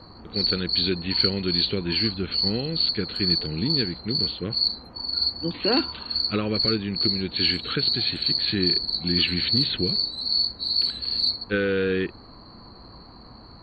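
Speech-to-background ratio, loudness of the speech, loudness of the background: -4.0 dB, -28.0 LUFS, -24.0 LUFS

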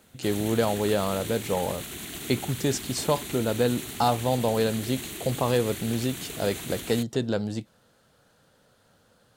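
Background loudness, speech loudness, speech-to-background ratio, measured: -35.5 LUFS, -27.5 LUFS, 8.0 dB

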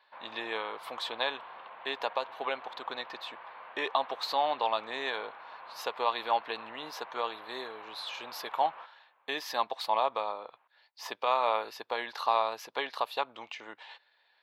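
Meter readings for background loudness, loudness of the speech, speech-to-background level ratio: -47.5 LUFS, -33.5 LUFS, 14.0 dB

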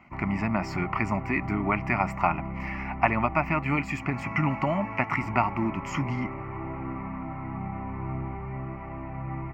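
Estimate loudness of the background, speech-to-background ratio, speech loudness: -36.0 LUFS, 8.0 dB, -28.0 LUFS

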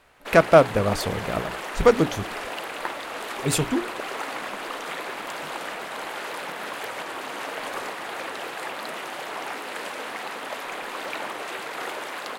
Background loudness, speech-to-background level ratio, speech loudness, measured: -32.5 LUFS, 11.0 dB, -21.5 LUFS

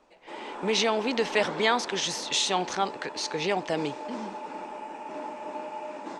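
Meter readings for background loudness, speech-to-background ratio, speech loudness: -38.5 LUFS, 11.0 dB, -27.5 LUFS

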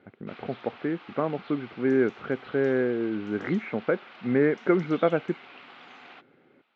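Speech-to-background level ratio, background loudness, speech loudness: 20.0 dB, -47.5 LUFS, -27.5 LUFS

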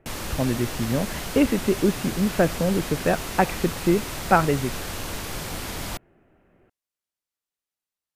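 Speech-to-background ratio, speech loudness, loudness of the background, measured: 8.0 dB, -24.0 LUFS, -32.0 LUFS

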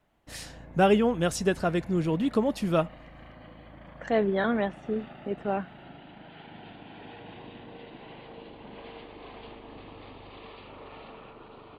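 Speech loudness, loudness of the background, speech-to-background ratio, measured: -27.5 LUFS, -47.0 LUFS, 19.5 dB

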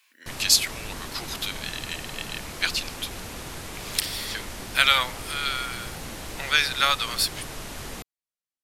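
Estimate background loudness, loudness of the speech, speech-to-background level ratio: -36.5 LUFS, -25.0 LUFS, 11.5 dB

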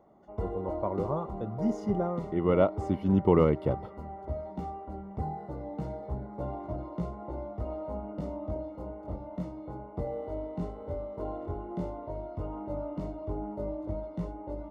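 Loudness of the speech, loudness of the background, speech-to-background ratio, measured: -29.0 LUFS, -38.0 LUFS, 9.0 dB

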